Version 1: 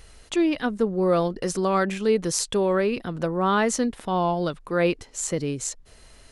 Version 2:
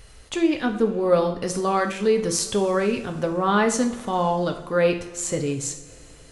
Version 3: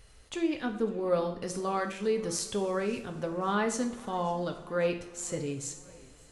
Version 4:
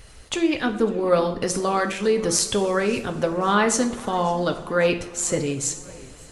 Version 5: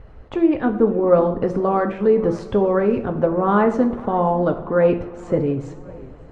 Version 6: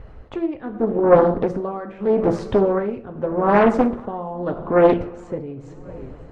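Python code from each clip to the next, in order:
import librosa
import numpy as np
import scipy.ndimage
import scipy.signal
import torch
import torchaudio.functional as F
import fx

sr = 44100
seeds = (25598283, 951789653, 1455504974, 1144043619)

y1 = fx.peak_eq(x, sr, hz=110.0, db=10.5, octaves=0.32)
y1 = fx.rev_double_slope(y1, sr, seeds[0], early_s=0.51, late_s=3.2, knee_db=-19, drr_db=4.0)
y2 = fx.echo_warbled(y1, sr, ms=549, feedback_pct=53, rate_hz=2.8, cents=160, wet_db=-24.0)
y2 = y2 * 10.0 ** (-9.0 / 20.0)
y3 = fx.hpss(y2, sr, part='percussive', gain_db=6)
y3 = y3 * 10.0 ** (8.0 / 20.0)
y4 = scipy.signal.sosfilt(scipy.signal.butter(2, 1000.0, 'lowpass', fs=sr, output='sos'), y3)
y4 = y4 * 10.0 ** (5.0 / 20.0)
y5 = y4 * (1.0 - 0.81 / 2.0 + 0.81 / 2.0 * np.cos(2.0 * np.pi * 0.82 * (np.arange(len(y4)) / sr)))
y5 = fx.doppler_dist(y5, sr, depth_ms=0.56)
y5 = y5 * 10.0 ** (2.5 / 20.0)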